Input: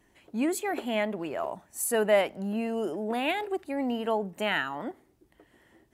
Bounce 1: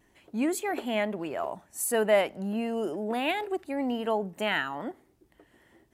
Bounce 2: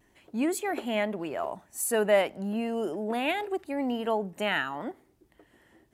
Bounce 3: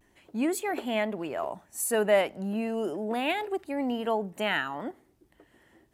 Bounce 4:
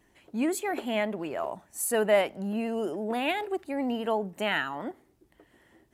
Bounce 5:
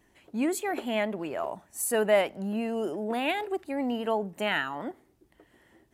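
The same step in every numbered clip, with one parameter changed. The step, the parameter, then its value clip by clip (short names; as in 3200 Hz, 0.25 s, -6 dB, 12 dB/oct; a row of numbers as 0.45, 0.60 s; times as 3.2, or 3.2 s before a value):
vibrato, rate: 1.6, 0.84, 0.33, 14, 8.5 Hz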